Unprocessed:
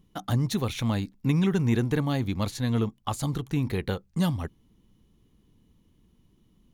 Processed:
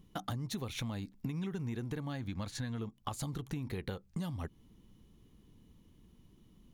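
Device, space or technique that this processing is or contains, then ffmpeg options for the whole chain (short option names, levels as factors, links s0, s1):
serial compression, peaks first: -filter_complex "[0:a]acompressor=threshold=0.0251:ratio=5,acompressor=threshold=0.0112:ratio=2,asettb=1/sr,asplit=3[s0][s1][s2];[s0]atrim=end=2.064[s3];[s1]atrim=start=2.06:end=2.79,asetpts=PTS-STARTPTS,afade=t=in:d=0.004:c=qsin,afade=t=out:st=0.726:d=0.004:c=qsin,equalizer=f=400:t=o:w=0.33:g=-6,equalizer=f=1600:t=o:w=0.33:g=7,equalizer=f=12500:t=o:w=0.33:g=-10[s4];[s2]atrim=start=2.786[s5];[s3][s4]acrossfade=d=0.004:c1=hsin:c2=qsin[s6];[s6][s5]acrossfade=d=0.004:c1=qsin:c2=hsin,volume=1.12"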